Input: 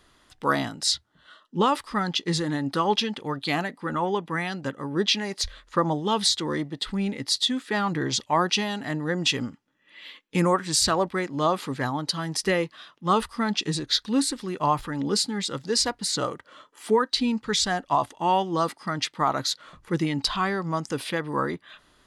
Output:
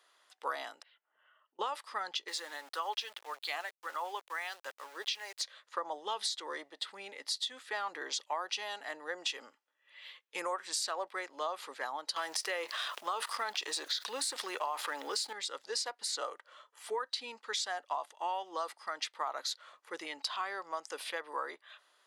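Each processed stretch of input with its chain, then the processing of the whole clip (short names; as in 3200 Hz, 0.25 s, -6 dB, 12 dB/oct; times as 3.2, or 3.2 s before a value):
0.82–1.59 Chebyshev low-pass 3000 Hz, order 6 + compressor 4:1, threshold -58 dBFS
2.28–5.4 HPF 700 Hz 6 dB/oct + sample gate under -40.5 dBFS
12.16–15.33 G.711 law mismatch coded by A + HPF 290 Hz 6 dB/oct + fast leveller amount 70%
whole clip: HPF 510 Hz 24 dB/oct; compressor 5:1, threshold -25 dBFS; gain -7 dB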